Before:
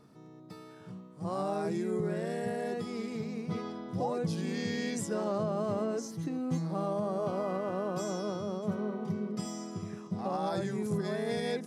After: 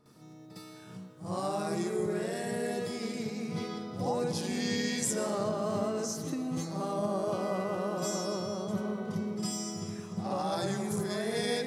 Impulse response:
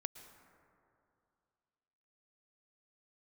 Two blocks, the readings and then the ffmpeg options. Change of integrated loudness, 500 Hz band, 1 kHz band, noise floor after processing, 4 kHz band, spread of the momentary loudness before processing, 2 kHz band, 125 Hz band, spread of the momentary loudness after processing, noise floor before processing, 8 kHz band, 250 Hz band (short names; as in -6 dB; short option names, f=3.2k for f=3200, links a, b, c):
+1.0 dB, +0.5 dB, +1.0 dB, -51 dBFS, +6.5 dB, 8 LU, +3.0 dB, -1.0 dB, 7 LU, -52 dBFS, +9.0 dB, +0.5 dB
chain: -filter_complex "[0:a]asplit=2[a][b];[1:a]atrim=start_sample=2205,highshelf=f=3k:g=12,adelay=58[c];[b][c]afir=irnorm=-1:irlink=0,volume=8dB[d];[a][d]amix=inputs=2:normalize=0,volume=-6.5dB"